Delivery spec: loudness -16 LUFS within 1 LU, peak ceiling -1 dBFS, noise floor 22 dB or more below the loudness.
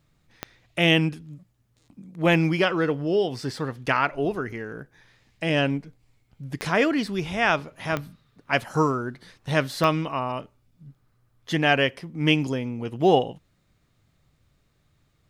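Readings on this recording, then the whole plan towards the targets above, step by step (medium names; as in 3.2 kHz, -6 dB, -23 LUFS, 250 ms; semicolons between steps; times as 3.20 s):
clicks found 4; loudness -24.5 LUFS; peak level -6.0 dBFS; loudness target -16.0 LUFS
-> de-click; trim +8.5 dB; peak limiter -1 dBFS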